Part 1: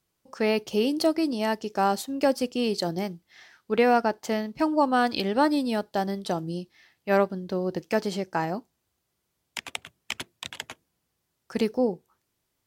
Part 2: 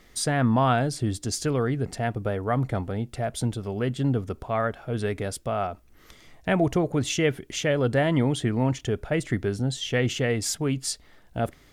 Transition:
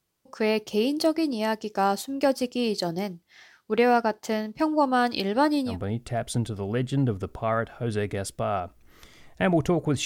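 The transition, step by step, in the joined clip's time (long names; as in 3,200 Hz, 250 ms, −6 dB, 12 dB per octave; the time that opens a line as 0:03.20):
part 1
0:05.71: continue with part 2 from 0:02.78, crossfade 0.12 s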